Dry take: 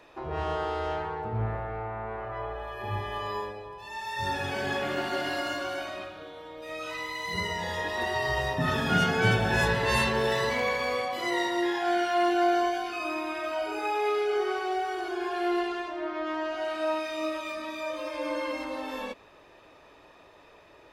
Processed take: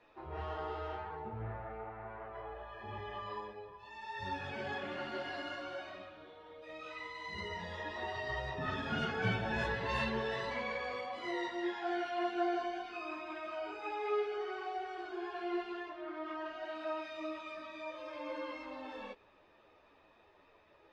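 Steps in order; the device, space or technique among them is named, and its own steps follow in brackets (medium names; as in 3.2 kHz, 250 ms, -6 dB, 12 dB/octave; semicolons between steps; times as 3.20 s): string-machine ensemble chorus (three-phase chorus; low-pass 4.2 kHz 12 dB/octave); trim -7 dB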